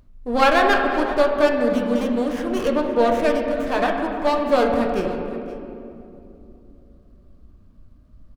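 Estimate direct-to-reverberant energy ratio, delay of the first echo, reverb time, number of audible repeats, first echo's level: 1.0 dB, 0.522 s, 2.8 s, 1, -17.0 dB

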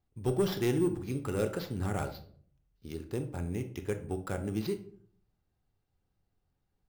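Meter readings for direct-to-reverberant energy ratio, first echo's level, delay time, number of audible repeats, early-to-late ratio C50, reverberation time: 6.5 dB, none, none, none, 11.5 dB, 0.55 s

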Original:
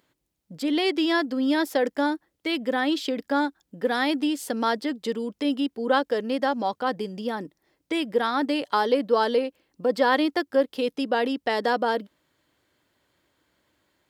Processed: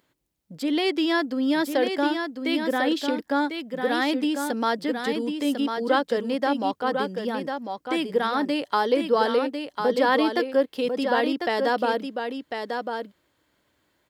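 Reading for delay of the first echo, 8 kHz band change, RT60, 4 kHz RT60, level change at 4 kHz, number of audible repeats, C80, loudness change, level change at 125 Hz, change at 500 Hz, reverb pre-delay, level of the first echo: 1.048 s, +0.5 dB, none, none, +0.5 dB, 1, none, +0.5 dB, n/a, +1.0 dB, none, -6.0 dB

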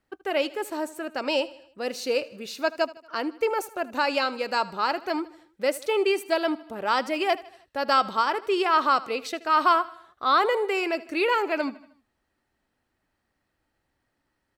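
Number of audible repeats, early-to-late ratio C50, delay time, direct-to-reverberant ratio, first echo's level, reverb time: 3, none, 78 ms, none, -19.0 dB, none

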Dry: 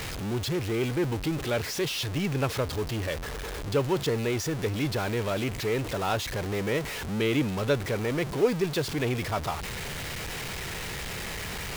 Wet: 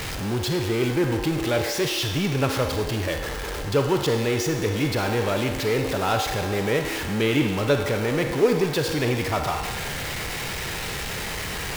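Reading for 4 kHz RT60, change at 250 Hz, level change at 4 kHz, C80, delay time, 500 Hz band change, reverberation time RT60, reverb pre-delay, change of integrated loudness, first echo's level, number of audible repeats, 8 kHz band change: 1.4 s, +5.0 dB, +5.5 dB, 6.0 dB, none, +5.0 dB, 1.4 s, 35 ms, +5.0 dB, none, none, +5.0 dB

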